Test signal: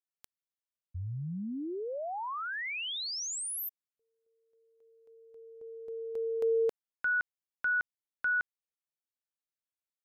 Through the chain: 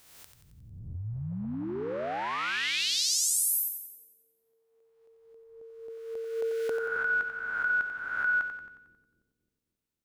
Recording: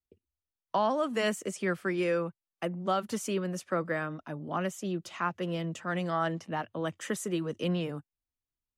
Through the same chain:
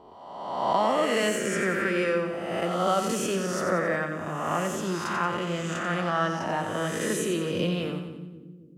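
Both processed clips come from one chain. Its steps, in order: reverse spectral sustain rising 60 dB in 1.37 s; two-band feedback delay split 350 Hz, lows 268 ms, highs 90 ms, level -7 dB; trim +1 dB

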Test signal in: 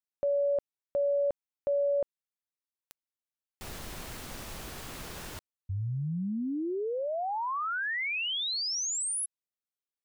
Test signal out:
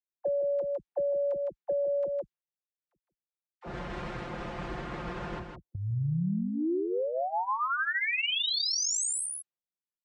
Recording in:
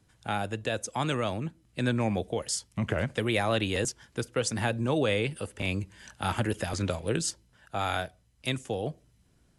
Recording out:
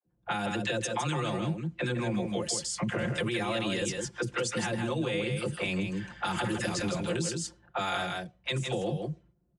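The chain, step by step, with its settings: dynamic bell 650 Hz, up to -4 dB, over -42 dBFS, Q 2.6; phase dispersion lows, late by 57 ms, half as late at 470 Hz; gate -57 dBFS, range -13 dB; level-controlled noise filter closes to 530 Hz, open at -28.5 dBFS; low-pass 9.1 kHz 24 dB/octave; treble shelf 6 kHz +4 dB; peak limiter -24 dBFS; high-pass 42 Hz; comb 5.7 ms, depth 79%; delay 159 ms -6 dB; compression 3:1, threshold -34 dBFS; trim +5 dB

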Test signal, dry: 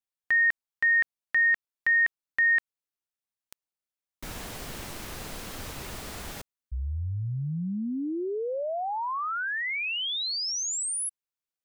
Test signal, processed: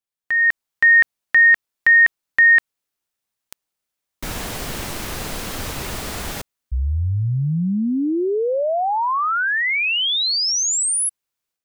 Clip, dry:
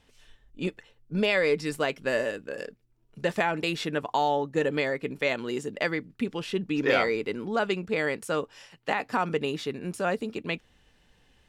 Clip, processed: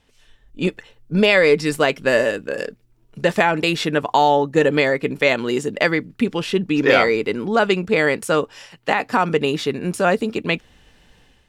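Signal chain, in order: level rider gain up to 9 dB; trim +1.5 dB

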